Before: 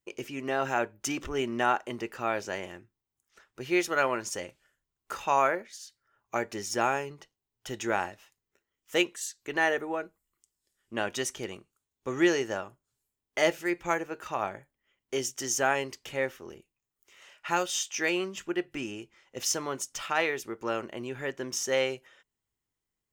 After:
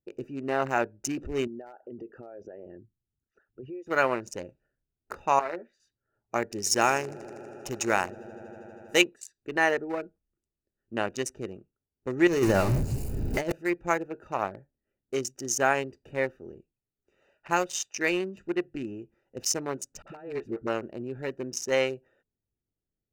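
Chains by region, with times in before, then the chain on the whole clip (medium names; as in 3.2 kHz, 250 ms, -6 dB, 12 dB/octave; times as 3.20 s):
1.47–3.87 s: resonances exaggerated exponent 2 + compression 4:1, threshold -39 dBFS
5.39–5.80 s: three-band isolator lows -14 dB, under 210 Hz, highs -12 dB, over 4.2 kHz + compression 12:1, threshold -28 dBFS + doubling 12 ms -5 dB
6.42–9.02 s: treble shelf 2.8 kHz +9.5 dB + echo with a slow build-up 80 ms, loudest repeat 5, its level -18 dB
12.27–13.52 s: jump at every zero crossing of -30 dBFS + compressor with a negative ratio -29 dBFS + bass shelf 310 Hz +10 dB
20.02–20.67 s: low-pass 1.9 kHz 6 dB/octave + compressor with a negative ratio -33 dBFS, ratio -0.5 + phase dispersion highs, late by 48 ms, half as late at 400 Hz
whole clip: local Wiener filter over 41 samples; band-stop 3.3 kHz, Q 5.5; trim +3 dB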